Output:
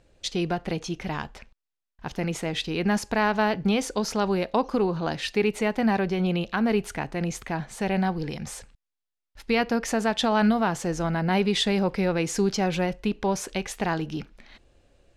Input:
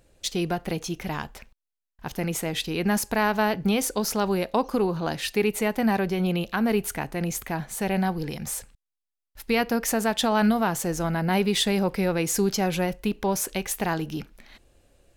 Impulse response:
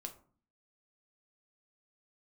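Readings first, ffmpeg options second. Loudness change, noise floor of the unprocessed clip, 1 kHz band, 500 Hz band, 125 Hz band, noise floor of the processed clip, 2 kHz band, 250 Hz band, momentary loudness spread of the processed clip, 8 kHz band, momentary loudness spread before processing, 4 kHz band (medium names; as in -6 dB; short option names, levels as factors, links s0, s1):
-0.5 dB, -85 dBFS, 0.0 dB, 0.0 dB, 0.0 dB, -85 dBFS, 0.0 dB, 0.0 dB, 10 LU, -5.5 dB, 9 LU, -0.5 dB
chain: -af "lowpass=6000"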